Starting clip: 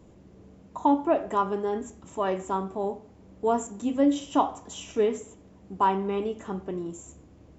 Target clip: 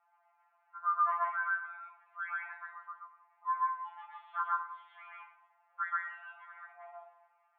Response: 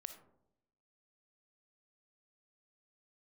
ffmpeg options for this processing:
-filter_complex "[0:a]highpass=f=530:t=q:w=0.5412,highpass=f=530:t=q:w=1.307,lowpass=f=2.1k:t=q:w=0.5176,lowpass=f=2.1k:t=q:w=0.7071,lowpass=f=2.1k:t=q:w=1.932,afreqshift=350,asplit=2[a][b];[1:a]atrim=start_sample=2205,lowpass=3.7k,adelay=131[c];[b][c]afir=irnorm=-1:irlink=0,volume=7dB[d];[a][d]amix=inputs=2:normalize=0,afftfilt=real='re*2.83*eq(mod(b,8),0)':imag='im*2.83*eq(mod(b,8),0)':win_size=2048:overlap=0.75,volume=-8.5dB"

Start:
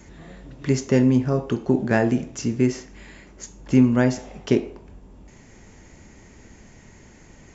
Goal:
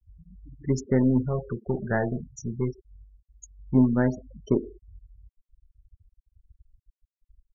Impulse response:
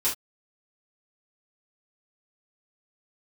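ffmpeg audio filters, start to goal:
-filter_complex "[0:a]asuperstop=centerf=2500:order=4:qfactor=2.7,lowshelf=f=75:g=5,aeval=exprs='0.708*(cos(1*acos(clip(val(0)/0.708,-1,1)))-cos(1*PI/2))+0.02*(cos(2*acos(clip(val(0)/0.708,-1,1)))-cos(2*PI/2))+0.0224*(cos(3*acos(clip(val(0)/0.708,-1,1)))-cos(3*PI/2))+0.0251*(cos(8*acos(clip(val(0)/0.708,-1,1)))-cos(8*PI/2))':c=same,asettb=1/sr,asplit=3[a][b][c];[a]atrim=end=1.264[d];[b]atrim=start=1.26:end=3.75,asetpts=PTS-STARTPTS,afade=t=in:d=0.004:c=qsin,afade=t=out:st=2.486:d=0.004:c=qsin,equalizer=f=280:t=o:w=0.37:g=-14[e];[c]atrim=start=3.746[f];[d][e]acrossfade=d=0.004:c1=hsin:c2=qsin[g];[g][f]acrossfade=d=0.004:c1=qsin:c2=hsin,afftfilt=real='re*gte(hypot(re,im),0.0562)':imag='im*gte(hypot(re,im),0.0562)':win_size=1024:overlap=0.75,volume=-4dB"

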